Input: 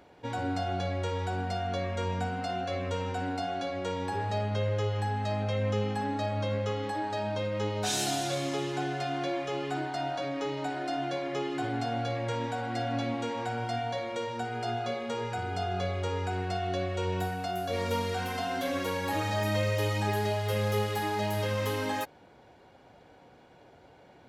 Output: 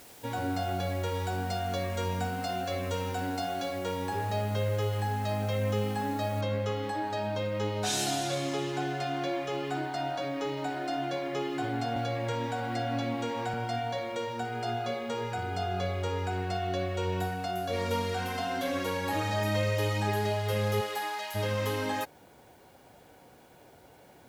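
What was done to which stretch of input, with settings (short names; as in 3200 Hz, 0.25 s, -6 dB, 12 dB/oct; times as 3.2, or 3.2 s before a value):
1.14–3.79 tone controls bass 0 dB, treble +5 dB
6.41 noise floor step -53 dB -67 dB
11.96–13.54 three-band squash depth 40%
20.8–21.34 HPF 340 Hz -> 1300 Hz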